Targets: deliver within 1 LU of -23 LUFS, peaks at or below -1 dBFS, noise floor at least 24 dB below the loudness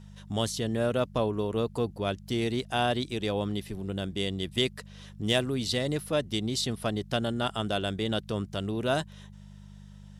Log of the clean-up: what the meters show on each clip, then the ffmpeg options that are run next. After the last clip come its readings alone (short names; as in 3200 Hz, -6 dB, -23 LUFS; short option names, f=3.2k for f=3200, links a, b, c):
hum 50 Hz; harmonics up to 200 Hz; hum level -45 dBFS; loudness -30.0 LUFS; peak -11.0 dBFS; loudness target -23.0 LUFS
-> -af "bandreject=f=50:t=h:w=4,bandreject=f=100:t=h:w=4,bandreject=f=150:t=h:w=4,bandreject=f=200:t=h:w=4"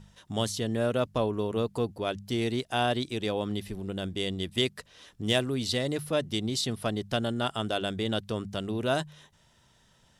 hum none; loudness -30.0 LUFS; peak -11.0 dBFS; loudness target -23.0 LUFS
-> -af "volume=7dB"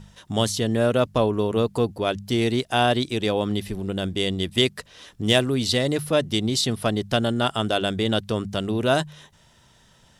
loudness -23.0 LUFS; peak -4.0 dBFS; noise floor -57 dBFS